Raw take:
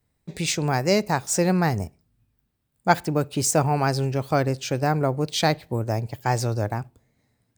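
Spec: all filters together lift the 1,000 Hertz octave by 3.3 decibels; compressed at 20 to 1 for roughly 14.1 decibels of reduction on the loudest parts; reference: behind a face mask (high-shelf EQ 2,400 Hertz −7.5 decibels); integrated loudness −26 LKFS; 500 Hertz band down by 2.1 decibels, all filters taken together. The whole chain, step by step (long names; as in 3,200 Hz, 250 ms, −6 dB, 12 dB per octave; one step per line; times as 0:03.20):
parametric band 500 Hz −5 dB
parametric band 1,000 Hz +8 dB
downward compressor 20 to 1, threshold −23 dBFS
high-shelf EQ 2,400 Hz −7.5 dB
level +4 dB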